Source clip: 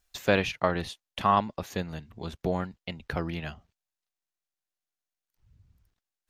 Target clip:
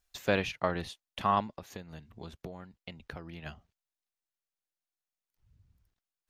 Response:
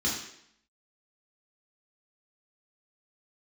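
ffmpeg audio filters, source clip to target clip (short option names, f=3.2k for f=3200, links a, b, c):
-filter_complex "[0:a]asettb=1/sr,asplit=3[a][b][c];[a]atrim=end=1.464[d];[b]atrim=start=1.46:end=3.46,asetpts=PTS-STARTPTS,afade=t=in:d=0.004:c=qsin,afade=t=out:st=1.996:d=0.004:c=qsin,acompressor=threshold=-35dB:ratio=12[e];[c]atrim=start=3.456[f];[d][e]acrossfade=d=0.004:c1=hsin:c2=qsin[g];[g][f]acrossfade=d=0.004:c1=qsin:c2=hsin,volume=-4.5dB"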